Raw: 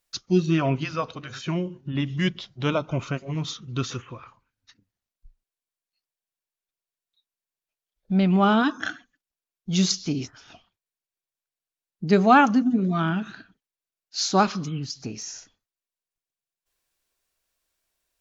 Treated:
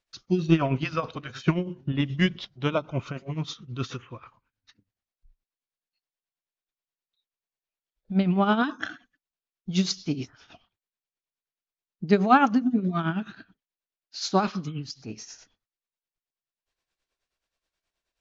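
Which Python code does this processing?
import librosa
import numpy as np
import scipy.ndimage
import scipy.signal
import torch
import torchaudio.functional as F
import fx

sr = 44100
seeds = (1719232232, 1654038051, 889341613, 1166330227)

y = scipy.signal.sosfilt(scipy.signal.butter(2, 5200.0, 'lowpass', fs=sr, output='sos'), x)
y = fx.transient(y, sr, attack_db=9, sustain_db=5, at=(0.45, 2.45))
y = y * (1.0 - 0.68 / 2.0 + 0.68 / 2.0 * np.cos(2.0 * np.pi * 9.4 * (np.arange(len(y)) / sr)))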